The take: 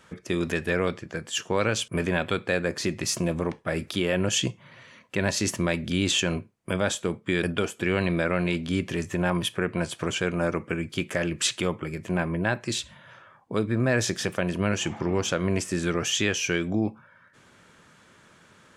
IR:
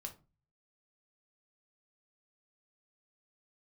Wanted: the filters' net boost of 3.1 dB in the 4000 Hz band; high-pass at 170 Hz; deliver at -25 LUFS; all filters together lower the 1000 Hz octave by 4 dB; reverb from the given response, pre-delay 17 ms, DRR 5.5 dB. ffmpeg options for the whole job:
-filter_complex "[0:a]highpass=170,equalizer=f=1k:t=o:g=-6,equalizer=f=4k:t=o:g=4.5,asplit=2[a][b];[1:a]atrim=start_sample=2205,adelay=17[c];[b][c]afir=irnorm=-1:irlink=0,volume=-2dB[d];[a][d]amix=inputs=2:normalize=0,volume=1.5dB"

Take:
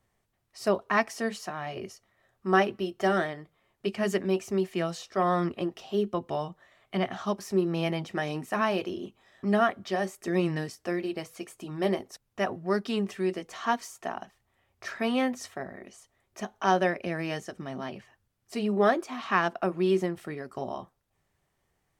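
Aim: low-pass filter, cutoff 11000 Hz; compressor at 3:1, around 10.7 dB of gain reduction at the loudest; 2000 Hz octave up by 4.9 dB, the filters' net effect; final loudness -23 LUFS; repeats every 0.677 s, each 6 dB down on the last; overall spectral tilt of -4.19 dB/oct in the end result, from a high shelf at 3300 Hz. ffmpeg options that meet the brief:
-af "lowpass=11k,equalizer=f=2k:t=o:g=4,highshelf=f=3.3k:g=7,acompressor=threshold=-31dB:ratio=3,aecho=1:1:677|1354|2031|2708|3385|4062:0.501|0.251|0.125|0.0626|0.0313|0.0157,volume=11.5dB"

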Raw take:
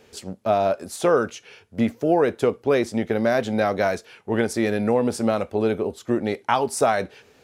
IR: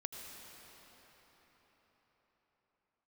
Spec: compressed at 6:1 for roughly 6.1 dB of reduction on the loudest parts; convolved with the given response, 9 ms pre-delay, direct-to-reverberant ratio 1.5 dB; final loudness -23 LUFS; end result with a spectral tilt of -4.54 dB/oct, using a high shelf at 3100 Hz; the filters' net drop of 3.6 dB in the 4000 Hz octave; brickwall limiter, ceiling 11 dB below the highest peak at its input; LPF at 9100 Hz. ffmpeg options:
-filter_complex "[0:a]lowpass=9.1k,highshelf=f=3.1k:g=5.5,equalizer=f=4k:t=o:g=-9,acompressor=threshold=-21dB:ratio=6,alimiter=limit=-19.5dB:level=0:latency=1,asplit=2[a][b];[1:a]atrim=start_sample=2205,adelay=9[c];[b][c]afir=irnorm=-1:irlink=0,volume=-0.5dB[d];[a][d]amix=inputs=2:normalize=0,volume=5dB"

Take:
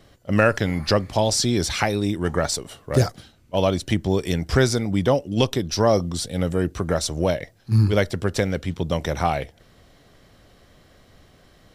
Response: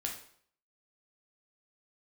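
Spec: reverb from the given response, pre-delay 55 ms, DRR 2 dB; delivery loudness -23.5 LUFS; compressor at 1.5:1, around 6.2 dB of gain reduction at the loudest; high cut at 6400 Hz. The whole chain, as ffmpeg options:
-filter_complex "[0:a]lowpass=6.4k,acompressor=threshold=-30dB:ratio=1.5,asplit=2[a][b];[1:a]atrim=start_sample=2205,adelay=55[c];[b][c]afir=irnorm=-1:irlink=0,volume=-3.5dB[d];[a][d]amix=inputs=2:normalize=0,volume=2dB"

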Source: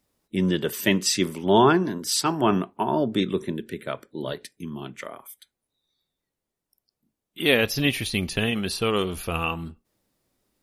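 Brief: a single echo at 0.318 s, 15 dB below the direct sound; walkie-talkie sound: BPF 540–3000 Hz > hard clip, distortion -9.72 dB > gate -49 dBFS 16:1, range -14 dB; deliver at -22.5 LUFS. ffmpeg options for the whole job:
-af "highpass=540,lowpass=3k,aecho=1:1:318:0.178,asoftclip=type=hard:threshold=-20.5dB,agate=range=-14dB:threshold=-49dB:ratio=16,volume=8dB"

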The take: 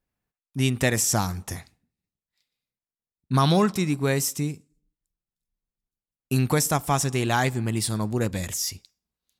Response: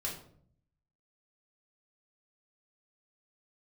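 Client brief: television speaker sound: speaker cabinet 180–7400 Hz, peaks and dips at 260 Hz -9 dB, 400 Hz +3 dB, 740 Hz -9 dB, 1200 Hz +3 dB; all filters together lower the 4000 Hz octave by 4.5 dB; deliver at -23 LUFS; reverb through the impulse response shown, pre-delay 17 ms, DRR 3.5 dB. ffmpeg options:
-filter_complex "[0:a]equalizer=f=4k:t=o:g=-6,asplit=2[a][b];[1:a]atrim=start_sample=2205,adelay=17[c];[b][c]afir=irnorm=-1:irlink=0,volume=-5.5dB[d];[a][d]amix=inputs=2:normalize=0,highpass=f=180:w=0.5412,highpass=f=180:w=1.3066,equalizer=f=260:t=q:w=4:g=-9,equalizer=f=400:t=q:w=4:g=3,equalizer=f=740:t=q:w=4:g=-9,equalizer=f=1.2k:t=q:w=4:g=3,lowpass=f=7.4k:w=0.5412,lowpass=f=7.4k:w=1.3066,volume=3dB"

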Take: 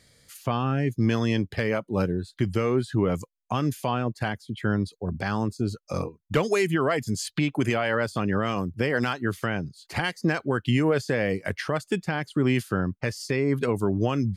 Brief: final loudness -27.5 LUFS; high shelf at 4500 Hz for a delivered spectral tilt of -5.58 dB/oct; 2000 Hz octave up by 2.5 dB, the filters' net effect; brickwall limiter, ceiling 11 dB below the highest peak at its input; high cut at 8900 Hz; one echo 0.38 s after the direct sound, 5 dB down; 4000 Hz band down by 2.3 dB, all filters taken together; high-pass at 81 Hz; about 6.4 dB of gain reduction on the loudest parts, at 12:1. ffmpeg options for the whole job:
-af "highpass=81,lowpass=8.9k,equalizer=f=2k:t=o:g=4,equalizer=f=4k:t=o:g=-8,highshelf=f=4.5k:g=5,acompressor=threshold=-24dB:ratio=12,alimiter=level_in=0.5dB:limit=-24dB:level=0:latency=1,volume=-0.5dB,aecho=1:1:380:0.562,volume=7dB"

